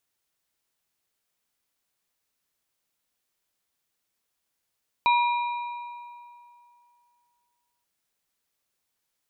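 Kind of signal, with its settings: metal hit plate, length 2.78 s, lowest mode 961 Hz, modes 3, decay 2.57 s, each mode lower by 7 dB, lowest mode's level -17 dB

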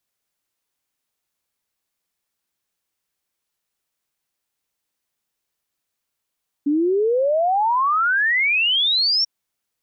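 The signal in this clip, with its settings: log sweep 280 Hz -> 5.6 kHz 2.59 s -15.5 dBFS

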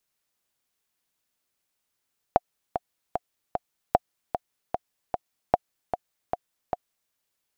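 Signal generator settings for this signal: metronome 151 bpm, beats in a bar 4, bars 3, 716 Hz, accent 8.5 dB -4 dBFS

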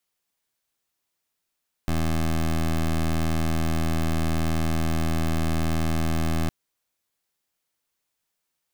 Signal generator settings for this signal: pulse 80.8 Hz, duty 17% -23 dBFS 4.61 s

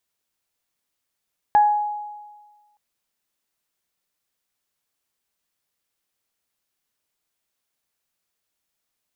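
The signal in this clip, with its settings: additive tone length 1.22 s, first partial 835 Hz, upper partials -18 dB, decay 1.41 s, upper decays 0.43 s, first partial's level -10 dB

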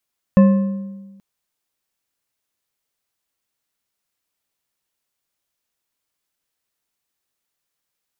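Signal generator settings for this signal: metal hit bar, length 0.83 s, lowest mode 196 Hz, decay 1.31 s, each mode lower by 9 dB, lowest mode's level -5.5 dB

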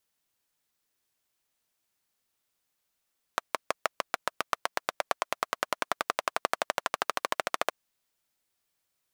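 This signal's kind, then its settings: single-cylinder engine model, changing speed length 4.32 s, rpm 700, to 1700, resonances 680/1100 Hz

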